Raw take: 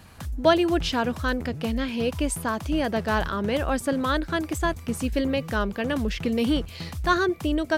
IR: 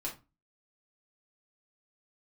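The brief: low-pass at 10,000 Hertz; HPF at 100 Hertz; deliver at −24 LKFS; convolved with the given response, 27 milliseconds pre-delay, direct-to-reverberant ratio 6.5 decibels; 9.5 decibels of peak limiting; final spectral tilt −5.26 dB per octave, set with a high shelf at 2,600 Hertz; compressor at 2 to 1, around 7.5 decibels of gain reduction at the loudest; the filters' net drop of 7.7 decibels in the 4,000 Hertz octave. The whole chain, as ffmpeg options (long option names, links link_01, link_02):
-filter_complex "[0:a]highpass=100,lowpass=10000,highshelf=frequency=2600:gain=-6.5,equalizer=frequency=4000:width_type=o:gain=-5,acompressor=threshold=-27dB:ratio=2,alimiter=limit=-24dB:level=0:latency=1,asplit=2[link_01][link_02];[1:a]atrim=start_sample=2205,adelay=27[link_03];[link_02][link_03]afir=irnorm=-1:irlink=0,volume=-7.5dB[link_04];[link_01][link_04]amix=inputs=2:normalize=0,volume=8dB"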